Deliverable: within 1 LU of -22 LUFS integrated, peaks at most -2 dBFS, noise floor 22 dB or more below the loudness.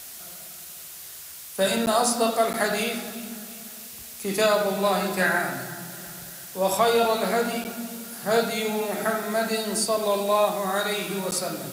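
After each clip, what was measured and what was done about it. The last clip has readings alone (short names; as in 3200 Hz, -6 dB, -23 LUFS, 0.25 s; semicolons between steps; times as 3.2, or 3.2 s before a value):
dropouts 4; longest dropout 9.8 ms; noise floor -41 dBFS; noise floor target -47 dBFS; loudness -24.5 LUFS; peak -10.0 dBFS; loudness target -22.0 LUFS
-> interpolate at 1.86/2.53/7.64/11.31, 9.8 ms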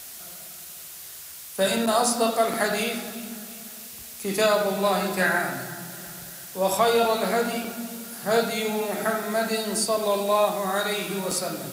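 dropouts 0; noise floor -41 dBFS; noise floor target -47 dBFS
-> denoiser 6 dB, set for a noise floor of -41 dBFS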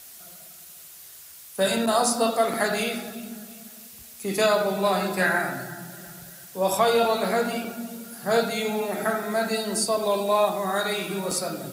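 noise floor -46 dBFS; noise floor target -47 dBFS
-> denoiser 6 dB, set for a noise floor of -46 dBFS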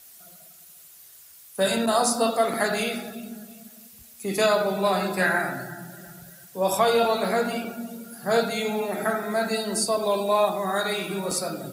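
noise floor -49 dBFS; loudness -24.5 LUFS; peak -10.0 dBFS; loudness target -22.0 LUFS
-> gain +2.5 dB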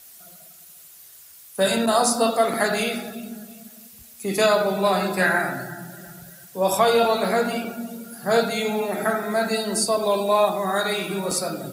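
loudness -22.0 LUFS; peak -7.5 dBFS; noise floor -47 dBFS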